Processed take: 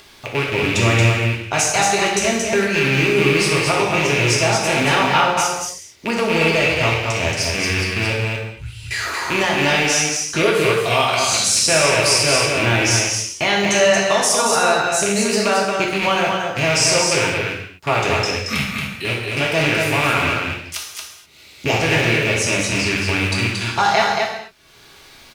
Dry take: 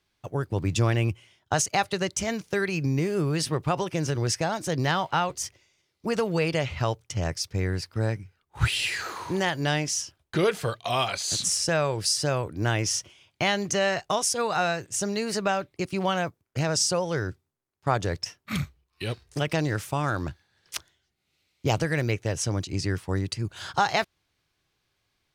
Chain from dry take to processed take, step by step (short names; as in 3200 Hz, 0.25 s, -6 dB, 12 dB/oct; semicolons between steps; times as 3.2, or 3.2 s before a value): rattling part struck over -32 dBFS, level -17 dBFS; 8.13–8.91 passive tone stack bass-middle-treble 10-0-1; in parallel at -2 dB: limiter -16 dBFS, peak gain reduction 7.5 dB; on the sum: upward compressor, threshold -31 dBFS; low shelf 220 Hz -5 dB; loudspeakers at several distances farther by 21 m -12 dB, 78 m -4 dB; non-linear reverb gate 0.28 s falling, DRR -2 dB